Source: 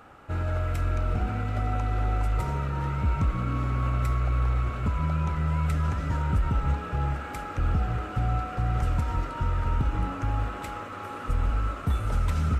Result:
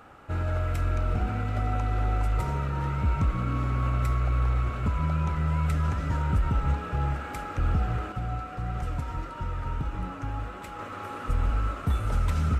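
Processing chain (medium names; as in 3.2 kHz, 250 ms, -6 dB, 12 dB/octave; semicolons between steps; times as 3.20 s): 8.12–10.79 s: flange 1.6 Hz, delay 4.9 ms, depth 2.8 ms, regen +65%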